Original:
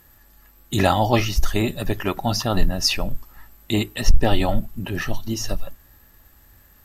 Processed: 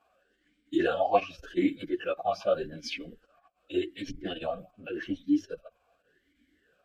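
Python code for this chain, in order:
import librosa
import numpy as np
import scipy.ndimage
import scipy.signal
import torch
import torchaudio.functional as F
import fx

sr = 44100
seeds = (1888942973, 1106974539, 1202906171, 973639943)

y = fx.chorus_voices(x, sr, voices=4, hz=0.76, base_ms=12, depth_ms=3.4, mix_pct=65)
y = fx.pitch_keep_formants(y, sr, semitones=-2.5)
y = fx.vowel_sweep(y, sr, vowels='a-i', hz=0.86)
y = F.gain(torch.from_numpy(y), 6.0).numpy()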